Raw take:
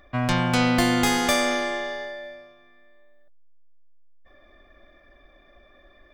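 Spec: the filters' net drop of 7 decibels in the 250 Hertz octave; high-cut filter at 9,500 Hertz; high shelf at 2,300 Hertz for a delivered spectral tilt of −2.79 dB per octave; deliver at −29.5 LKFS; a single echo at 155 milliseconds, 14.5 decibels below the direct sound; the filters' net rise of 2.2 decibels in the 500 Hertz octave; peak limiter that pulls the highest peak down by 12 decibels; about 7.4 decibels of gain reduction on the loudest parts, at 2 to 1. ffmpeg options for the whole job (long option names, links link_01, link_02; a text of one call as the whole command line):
ffmpeg -i in.wav -af "lowpass=9500,equalizer=frequency=250:width_type=o:gain=-9,equalizer=frequency=500:width_type=o:gain=4,highshelf=frequency=2300:gain=9,acompressor=threshold=-28dB:ratio=2,alimiter=limit=-19.5dB:level=0:latency=1,aecho=1:1:155:0.188,volume=-1dB" out.wav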